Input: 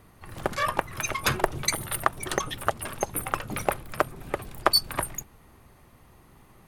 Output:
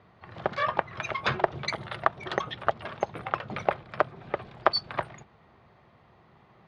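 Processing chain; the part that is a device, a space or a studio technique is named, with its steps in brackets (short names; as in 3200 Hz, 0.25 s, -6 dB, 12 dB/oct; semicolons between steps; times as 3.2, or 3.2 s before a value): guitar cabinet (speaker cabinet 110–4000 Hz, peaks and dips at 280 Hz -8 dB, 680 Hz +4 dB, 2700 Hz -3 dB); gain -1 dB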